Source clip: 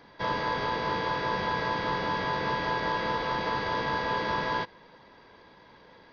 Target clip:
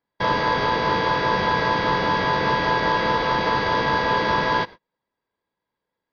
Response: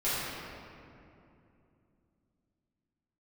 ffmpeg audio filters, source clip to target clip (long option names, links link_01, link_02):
-af "agate=range=-38dB:threshold=-43dB:ratio=16:detection=peak,volume=8.5dB"